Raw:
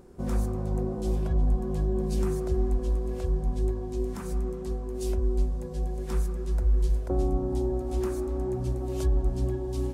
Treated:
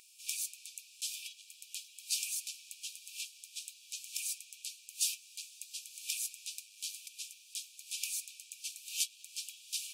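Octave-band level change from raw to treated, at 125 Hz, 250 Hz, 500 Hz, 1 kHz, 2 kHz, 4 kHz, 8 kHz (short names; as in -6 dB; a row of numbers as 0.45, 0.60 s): under -40 dB, under -40 dB, under -40 dB, under -40 dB, +3.0 dB, +12.5 dB, +12.5 dB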